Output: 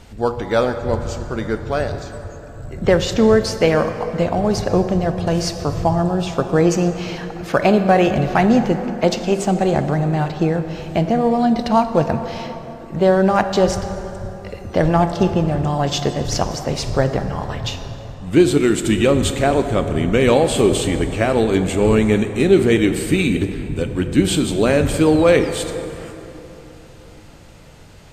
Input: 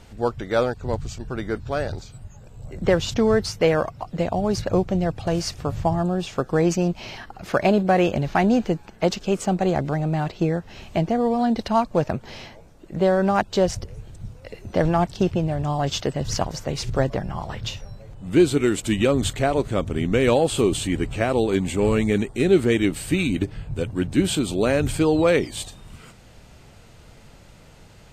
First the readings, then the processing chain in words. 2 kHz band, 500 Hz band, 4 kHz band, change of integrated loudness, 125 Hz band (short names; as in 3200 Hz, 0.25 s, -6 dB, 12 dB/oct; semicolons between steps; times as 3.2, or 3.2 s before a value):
+4.5 dB, +5.0 dB, +4.5 dB, +4.5 dB, +4.5 dB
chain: plate-style reverb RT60 3.6 s, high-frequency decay 0.5×, DRR 7.5 dB; gain +4 dB